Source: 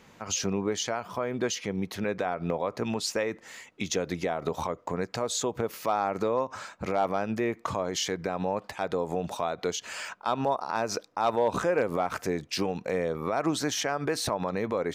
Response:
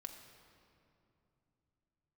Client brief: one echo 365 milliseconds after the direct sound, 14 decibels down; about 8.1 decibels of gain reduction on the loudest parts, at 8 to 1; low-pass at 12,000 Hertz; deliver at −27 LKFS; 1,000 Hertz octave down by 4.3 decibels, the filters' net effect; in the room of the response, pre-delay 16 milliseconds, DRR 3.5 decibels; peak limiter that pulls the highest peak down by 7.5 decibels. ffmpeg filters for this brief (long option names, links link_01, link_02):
-filter_complex "[0:a]lowpass=12000,equalizer=frequency=1000:width_type=o:gain=-6,acompressor=threshold=-31dB:ratio=8,alimiter=level_in=3dB:limit=-24dB:level=0:latency=1,volume=-3dB,aecho=1:1:365:0.2,asplit=2[link_01][link_02];[1:a]atrim=start_sample=2205,adelay=16[link_03];[link_02][link_03]afir=irnorm=-1:irlink=0,volume=1dB[link_04];[link_01][link_04]amix=inputs=2:normalize=0,volume=9.5dB"